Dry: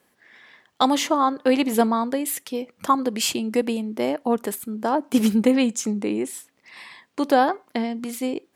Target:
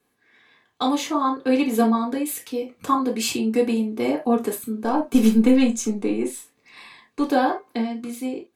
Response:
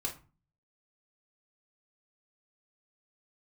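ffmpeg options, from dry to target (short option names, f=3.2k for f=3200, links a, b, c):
-filter_complex "[0:a]dynaudnorm=f=190:g=9:m=8dB,asettb=1/sr,asplit=3[a][b][c];[a]atrim=end=4.834[d];[b]atrim=start=4.83:end=7.22,asetpts=PTS-STARTPTS,afade=t=in:d=0.004:c=qsin,afade=t=out:st=2.386:d=0.004:c=qsin,aeval=exprs='0.841*(cos(1*acos(clip(val(0)/0.841,-1,1)))-cos(1*PI/2))+0.0335*(cos(4*acos(clip(val(0)/0.841,-1,1)))-cos(4*PI/2))':c=same[e];[c]atrim=start=7.216[f];[d][e]acrossfade=d=0.004:c1=hsin:c2=qsin[g];[g][f]acrossfade=d=0.004:c1=qsin:c2=hsin[h];[1:a]atrim=start_sample=2205,atrim=end_sample=3969[i];[h][i]afir=irnorm=-1:irlink=0,volume=-7dB"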